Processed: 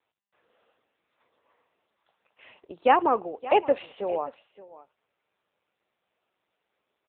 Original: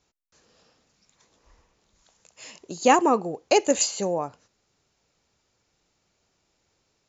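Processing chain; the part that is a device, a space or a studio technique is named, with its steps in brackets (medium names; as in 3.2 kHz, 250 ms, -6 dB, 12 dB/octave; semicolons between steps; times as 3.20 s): 3.24–3.94 s: dynamic bell 810 Hz, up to +3 dB, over -31 dBFS, Q 1.6; satellite phone (band-pass 400–3100 Hz; delay 571 ms -17 dB; AMR-NB 6.7 kbps 8 kHz)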